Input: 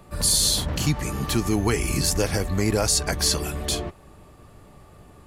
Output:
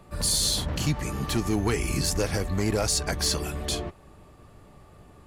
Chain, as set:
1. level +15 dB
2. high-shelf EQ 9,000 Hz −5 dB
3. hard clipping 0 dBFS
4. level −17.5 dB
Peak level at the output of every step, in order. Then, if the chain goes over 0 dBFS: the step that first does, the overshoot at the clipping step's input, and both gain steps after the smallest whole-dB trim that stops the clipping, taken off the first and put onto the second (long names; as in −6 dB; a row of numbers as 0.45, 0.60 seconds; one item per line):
+6.0, +4.5, 0.0, −17.5 dBFS
step 1, 4.5 dB
step 1 +10 dB, step 4 −12.5 dB